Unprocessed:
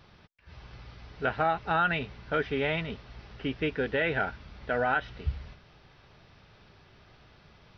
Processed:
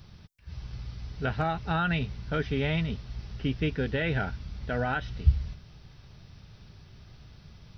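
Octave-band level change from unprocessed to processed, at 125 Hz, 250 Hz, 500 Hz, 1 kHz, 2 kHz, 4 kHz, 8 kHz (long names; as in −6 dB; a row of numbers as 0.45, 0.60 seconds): +8.5 dB, +3.5 dB, −2.5 dB, −4.0 dB, −3.0 dB, +0.5 dB, can't be measured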